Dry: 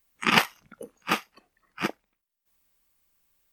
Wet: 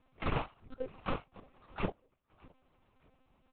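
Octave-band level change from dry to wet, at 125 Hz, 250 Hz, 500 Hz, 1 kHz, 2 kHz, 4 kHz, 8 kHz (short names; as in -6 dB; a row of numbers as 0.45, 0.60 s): -0.5 dB, -9.0 dB, -4.0 dB, -12.0 dB, -18.5 dB, -21.0 dB, under -40 dB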